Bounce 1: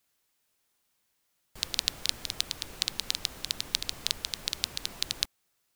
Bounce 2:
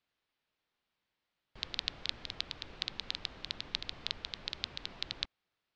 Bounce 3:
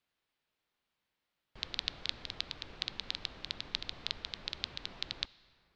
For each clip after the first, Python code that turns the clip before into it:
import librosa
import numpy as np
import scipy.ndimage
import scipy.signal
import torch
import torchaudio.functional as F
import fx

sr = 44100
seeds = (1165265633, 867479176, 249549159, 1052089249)

y1 = scipy.signal.sosfilt(scipy.signal.butter(4, 4200.0, 'lowpass', fs=sr, output='sos'), x)
y1 = y1 * 10.0 ** (-4.5 / 20.0)
y2 = fx.rev_plate(y1, sr, seeds[0], rt60_s=4.0, hf_ratio=0.35, predelay_ms=0, drr_db=18.0)